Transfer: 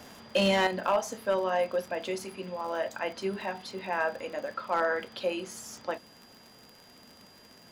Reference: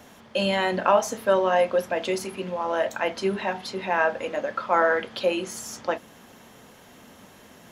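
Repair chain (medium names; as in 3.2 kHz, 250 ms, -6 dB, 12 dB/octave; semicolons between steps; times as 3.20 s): clip repair -18 dBFS; de-click; band-stop 4.8 kHz, Q 30; gain correction +7 dB, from 0.67 s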